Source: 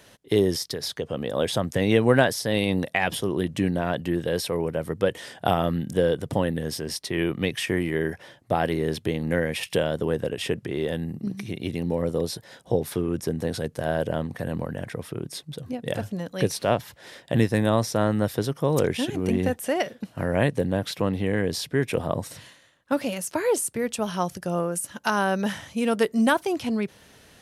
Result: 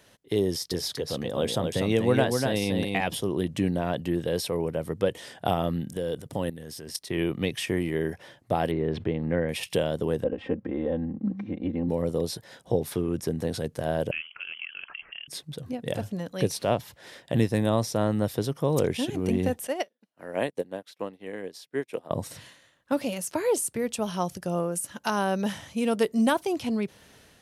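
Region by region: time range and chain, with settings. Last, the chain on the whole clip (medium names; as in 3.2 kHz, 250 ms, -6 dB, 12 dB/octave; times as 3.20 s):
0.47–3.01 s: band-stop 600 Hz, Q 17 + delay 245 ms -4.5 dB
5.89–7.10 s: treble shelf 5.3 kHz +7.5 dB + level held to a coarse grid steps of 13 dB
8.71–9.49 s: low-pass 2.1 kHz + decay stretcher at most 120 dB/s
10.24–11.89 s: low-pass 1.2 kHz + comb 3.8 ms, depth 90%
14.11–15.28 s: three-band isolator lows -20 dB, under 370 Hz, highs -15 dB, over 2.3 kHz + frequency inversion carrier 3.2 kHz
19.67–22.11 s: high-pass 290 Hz + upward expansion 2.5:1, over -42 dBFS
whole clip: dynamic bell 1.6 kHz, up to -5 dB, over -42 dBFS, Q 1.6; level rider gain up to 4 dB; trim -5.5 dB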